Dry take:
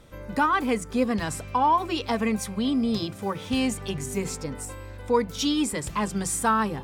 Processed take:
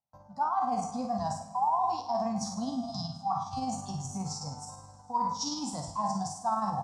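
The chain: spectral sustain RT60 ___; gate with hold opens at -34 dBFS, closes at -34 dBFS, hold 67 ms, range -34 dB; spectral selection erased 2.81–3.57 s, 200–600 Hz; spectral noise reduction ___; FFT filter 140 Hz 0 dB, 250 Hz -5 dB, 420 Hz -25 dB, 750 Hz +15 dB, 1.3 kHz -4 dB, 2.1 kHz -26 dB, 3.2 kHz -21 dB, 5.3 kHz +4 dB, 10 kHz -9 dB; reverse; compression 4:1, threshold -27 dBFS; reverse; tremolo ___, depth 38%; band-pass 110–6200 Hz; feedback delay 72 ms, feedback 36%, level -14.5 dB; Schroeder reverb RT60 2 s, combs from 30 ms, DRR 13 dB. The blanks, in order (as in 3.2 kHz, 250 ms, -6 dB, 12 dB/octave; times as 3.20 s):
0.57 s, 7 dB, 19 Hz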